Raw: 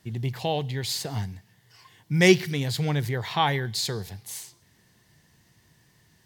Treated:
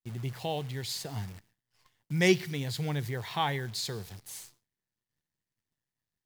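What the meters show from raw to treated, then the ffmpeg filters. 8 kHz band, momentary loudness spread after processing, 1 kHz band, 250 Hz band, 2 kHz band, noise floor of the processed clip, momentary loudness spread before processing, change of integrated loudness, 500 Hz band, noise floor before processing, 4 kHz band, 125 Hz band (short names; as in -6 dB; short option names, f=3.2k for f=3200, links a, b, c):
-6.5 dB, 18 LU, -6.5 dB, -6.5 dB, -6.5 dB, under -85 dBFS, 18 LU, -6.0 dB, -6.5 dB, -63 dBFS, -6.5 dB, -6.5 dB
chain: -af "acrusher=bits=8:dc=4:mix=0:aa=0.000001,agate=range=-33dB:threshold=-50dB:ratio=3:detection=peak,volume=-6.5dB"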